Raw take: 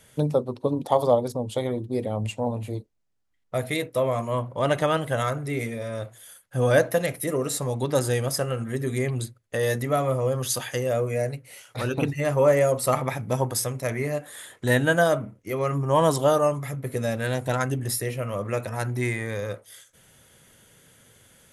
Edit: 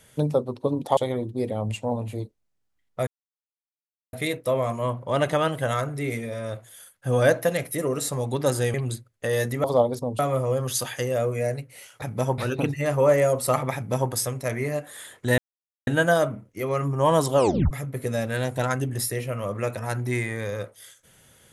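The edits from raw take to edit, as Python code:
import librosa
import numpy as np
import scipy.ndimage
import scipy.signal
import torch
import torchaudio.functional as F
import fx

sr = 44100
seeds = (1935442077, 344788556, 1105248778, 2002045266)

y = fx.edit(x, sr, fx.move(start_s=0.97, length_s=0.55, to_s=9.94),
    fx.insert_silence(at_s=3.62, length_s=1.06),
    fx.cut(start_s=8.23, length_s=0.81),
    fx.duplicate(start_s=13.14, length_s=0.36, to_s=11.77),
    fx.insert_silence(at_s=14.77, length_s=0.49),
    fx.tape_stop(start_s=16.26, length_s=0.35), tone=tone)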